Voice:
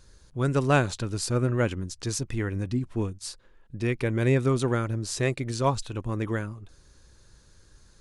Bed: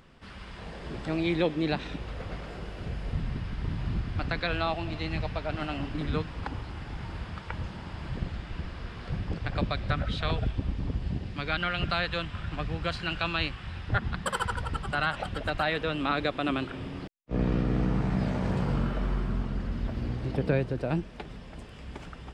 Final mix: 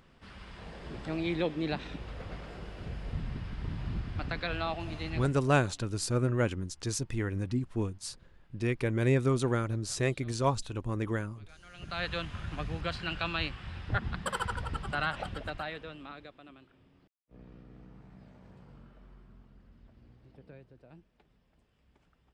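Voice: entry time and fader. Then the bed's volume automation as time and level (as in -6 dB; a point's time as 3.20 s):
4.80 s, -3.5 dB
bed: 5.19 s -4.5 dB
5.55 s -28 dB
11.61 s -28 dB
12.04 s -3.5 dB
15.26 s -3.5 dB
16.56 s -26 dB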